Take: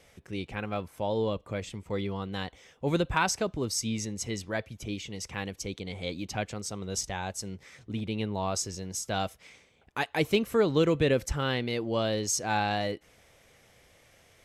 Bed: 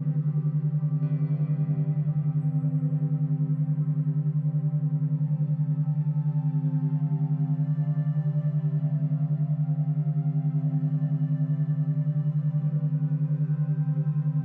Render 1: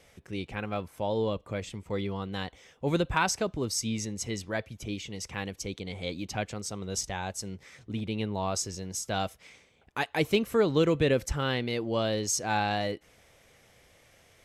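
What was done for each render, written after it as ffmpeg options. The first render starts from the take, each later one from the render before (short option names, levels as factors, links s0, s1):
-af anull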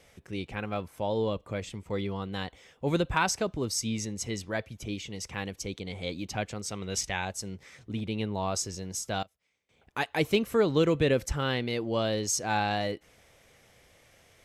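-filter_complex "[0:a]asettb=1/sr,asplit=3[s0][s1][s2];[s0]atrim=end=2.234[s3];[s1]atrim=start=2.23:end=2.9,asetpts=PTS-STARTPTS,afade=t=in:d=0.004:c=qsin,afade=t=out:st=0.666:d=0.004:c=qsin,bandreject=f=6000:w=12[s4];[s2]atrim=start=2.896[s5];[s3][s4]acrossfade=d=0.004:c1=hsin:c2=qsin[s6];[s6][s5]acrossfade=d=0.004:c1=qsin:c2=hsin,asettb=1/sr,asplit=3[s7][s8][s9];[s7]atrim=end=6.684[s10];[s8]atrim=start=6.68:end=7.25,asetpts=PTS-STARTPTS,afade=t=in:d=0.004:c=qsin,afade=t=out:st=0.566:d=0.004:c=qsin,equalizer=f=2300:w=1.2:g=9[s11];[s9]atrim=start=7.246[s12];[s10][s11]acrossfade=d=0.004:c1=hsin:c2=qsin[s13];[s13][s12]acrossfade=d=0.004:c1=qsin:c2=hsin,asplit=3[s14][s15][s16];[s14]atrim=end=9.23,asetpts=PTS-STARTPTS,afade=t=out:st=8.92:d=0.31:c=log:silence=0.0630957[s17];[s15]atrim=start=9.23:end=9.69,asetpts=PTS-STARTPTS,volume=0.0631[s18];[s16]atrim=start=9.69,asetpts=PTS-STARTPTS,afade=t=in:d=0.31:c=log:silence=0.0630957[s19];[s17][s18][s19]concat=n=3:v=0:a=1"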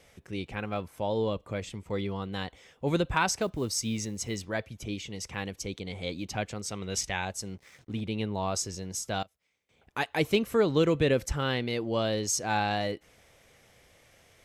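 -filter_complex "[0:a]asettb=1/sr,asplit=3[s0][s1][s2];[s0]atrim=end=3.414[s3];[s1]atrim=start=3.41:end=4.45,asetpts=PTS-STARTPTS,afade=t=in:d=0.004:c=qsin,afade=t=out:st=1.036:d=0.004:c=qsin,acrusher=bits=8:mode=log:mix=0:aa=0.000001[s4];[s2]atrim=start=4.446[s5];[s3][s4]acrossfade=d=0.004:c1=hsin:c2=qsin[s6];[s6][s5]acrossfade=d=0.004:c1=qsin:c2=hsin,asettb=1/sr,asplit=3[s7][s8][s9];[s7]atrim=end=7.454[s10];[s8]atrim=start=7.45:end=7.98,asetpts=PTS-STARTPTS,afade=t=in:d=0.004:c=qsin,afade=t=out:st=0.526:d=0.004:c=qsin,aeval=exprs='sgn(val(0))*max(abs(val(0))-0.00119,0)':c=same[s11];[s9]atrim=start=7.976[s12];[s10][s11]acrossfade=d=0.004:c1=hsin:c2=qsin[s13];[s13][s12]acrossfade=d=0.004:c1=qsin:c2=hsin"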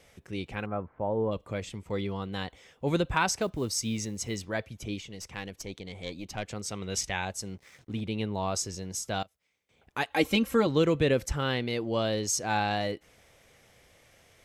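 -filter_complex "[0:a]asplit=3[s0][s1][s2];[s0]afade=t=out:st=0.65:d=0.02[s3];[s1]lowpass=f=1600:w=0.5412,lowpass=f=1600:w=1.3066,afade=t=in:st=0.65:d=0.02,afade=t=out:st=1.31:d=0.02[s4];[s2]afade=t=in:st=1.31:d=0.02[s5];[s3][s4][s5]amix=inputs=3:normalize=0,asettb=1/sr,asplit=3[s6][s7][s8];[s6]atrim=end=5.004[s9];[s7]atrim=start=5:end=6.48,asetpts=PTS-STARTPTS,afade=t=in:d=0.004:c=qsin,afade=t=out:st=1.476:d=0.004:c=qsin,aeval=exprs='(tanh(12.6*val(0)+0.7)-tanh(0.7))/12.6':c=same[s10];[s8]atrim=start=6.476[s11];[s9][s10]acrossfade=d=0.004:c1=hsin:c2=qsin[s12];[s12][s11]acrossfade=d=0.004:c1=qsin:c2=hsin,asettb=1/sr,asplit=3[s13][s14][s15];[s13]atrim=end=10.104[s16];[s14]atrim=start=10.1:end=10.67,asetpts=PTS-STARTPTS,afade=t=in:d=0.004:c=qsin,afade=t=out:st=0.566:d=0.004:c=qsin,aecho=1:1:3.7:0.86,atrim=end_sample=25137[s17];[s15]atrim=start=10.666[s18];[s16][s17]acrossfade=d=0.004:c1=hsin:c2=qsin[s19];[s19][s18]acrossfade=d=0.004:c1=qsin:c2=hsin"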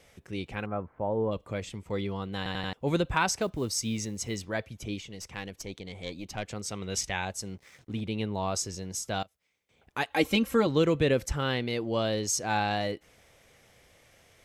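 -filter_complex "[0:a]asplit=5[s0][s1][s2][s3][s4];[s0]atrim=end=2.462[s5];[s1]atrim=start=2.368:end=2.462[s6];[s2]atrim=start=2.368:end=2.462[s7];[s3]atrim=start=2.368:end=2.462[s8];[s4]atrim=start=2.728[s9];[s5][s6]acrossfade=d=0.004:c1=hsin:c2=hsin[s10];[s10][s7]acrossfade=d=0.004:c1=hsin:c2=hsin[s11];[s11][s8]acrossfade=d=0.004:c1=hsin:c2=hsin[s12];[s12][s9]acrossfade=d=0.004:c1=hsin:c2=hsin"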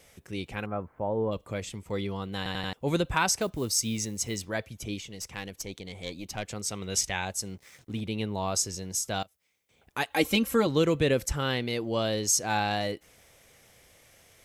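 -af "highshelf=f=7000:g=10"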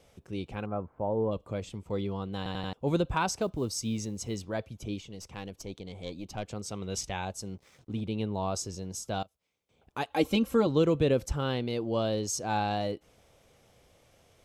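-af "lowpass=f=2500:p=1,equalizer=f=1900:t=o:w=0.71:g=-9"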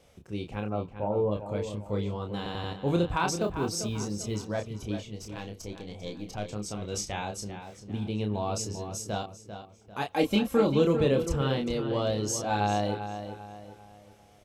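-filter_complex "[0:a]asplit=2[s0][s1];[s1]adelay=29,volume=0.562[s2];[s0][s2]amix=inputs=2:normalize=0,asplit=2[s3][s4];[s4]adelay=395,lowpass=f=4000:p=1,volume=0.335,asplit=2[s5][s6];[s6]adelay=395,lowpass=f=4000:p=1,volume=0.4,asplit=2[s7][s8];[s8]adelay=395,lowpass=f=4000:p=1,volume=0.4,asplit=2[s9][s10];[s10]adelay=395,lowpass=f=4000:p=1,volume=0.4[s11];[s5][s7][s9][s11]amix=inputs=4:normalize=0[s12];[s3][s12]amix=inputs=2:normalize=0"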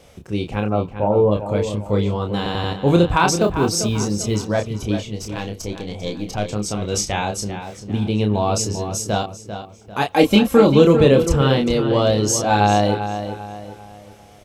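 -af "volume=3.76,alimiter=limit=0.891:level=0:latency=1"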